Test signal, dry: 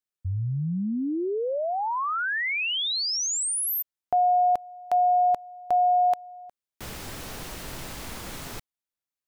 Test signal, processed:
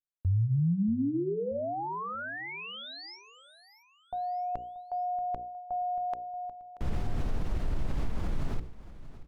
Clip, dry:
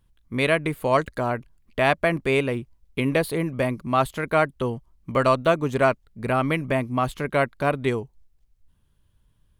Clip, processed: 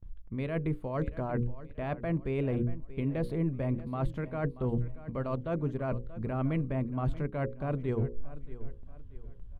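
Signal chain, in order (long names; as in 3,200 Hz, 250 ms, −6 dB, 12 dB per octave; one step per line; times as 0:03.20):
mains-hum notches 60/120/180/240/300/360/420/480/540 Hz
reversed playback
downward compressor 12 to 1, threshold −34 dBFS
reversed playback
spectral tilt −4 dB per octave
brickwall limiter −22 dBFS
high-shelf EQ 11,000 Hz −8.5 dB
noise gate with hold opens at −40 dBFS, closes at −43 dBFS, hold 34 ms, range −20 dB
on a send: repeating echo 632 ms, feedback 37%, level −16 dB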